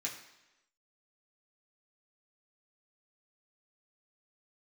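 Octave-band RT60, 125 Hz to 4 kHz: 0.85, 0.95, 0.95, 1.0, 1.0, 0.95 s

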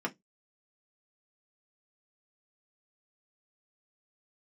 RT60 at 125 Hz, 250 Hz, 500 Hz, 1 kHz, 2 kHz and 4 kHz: 0.25, 0.20, 0.15, 0.10, 0.15, 0.15 s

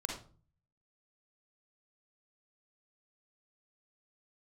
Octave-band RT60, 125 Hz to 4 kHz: 0.80, 0.60, 0.45, 0.40, 0.30, 0.30 s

